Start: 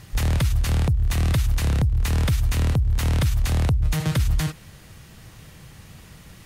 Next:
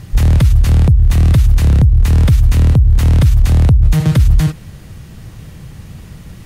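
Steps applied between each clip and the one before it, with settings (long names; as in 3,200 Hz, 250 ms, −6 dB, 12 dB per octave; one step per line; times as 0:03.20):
low-shelf EQ 450 Hz +10 dB
in parallel at −3 dB: brickwall limiter −10 dBFS, peak gain reduction 7 dB
on the sum: level −1 dB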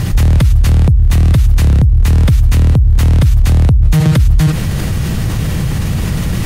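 envelope flattener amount 70%
level −1 dB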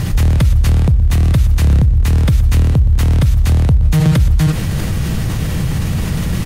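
repeating echo 121 ms, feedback 43%, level −17.5 dB
on a send at −18.5 dB: convolution reverb RT60 0.60 s, pre-delay 4 ms
on the sum: level −2 dB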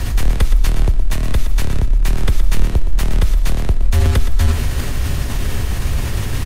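frequency shifter −75 Hz
repeating echo 118 ms, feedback 46%, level −11 dB
level −1 dB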